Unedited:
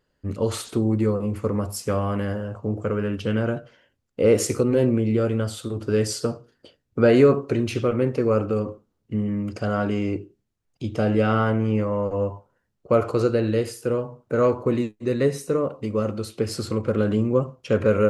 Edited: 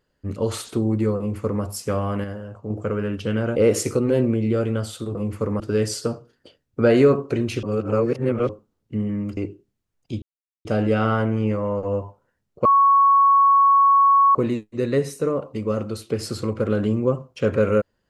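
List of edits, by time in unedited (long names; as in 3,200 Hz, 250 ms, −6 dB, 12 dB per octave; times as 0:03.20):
0:01.18–0:01.63: duplicate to 0:05.79
0:02.24–0:02.70: clip gain −5 dB
0:03.56–0:04.20: remove
0:07.82–0:08.68: reverse
0:09.56–0:10.08: remove
0:10.93: splice in silence 0.43 s
0:12.93–0:14.63: beep over 1,110 Hz −11.5 dBFS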